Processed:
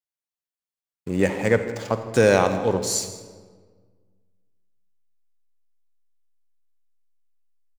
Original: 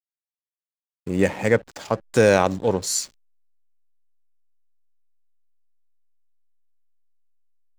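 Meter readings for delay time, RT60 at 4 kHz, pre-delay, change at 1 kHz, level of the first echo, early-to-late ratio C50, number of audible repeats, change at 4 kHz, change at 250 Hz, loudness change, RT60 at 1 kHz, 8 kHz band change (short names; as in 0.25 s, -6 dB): 0.16 s, 1.0 s, 39 ms, -0.5 dB, -19.0 dB, 9.0 dB, 1, -0.5 dB, -0.5 dB, -0.5 dB, 1.5 s, -0.5 dB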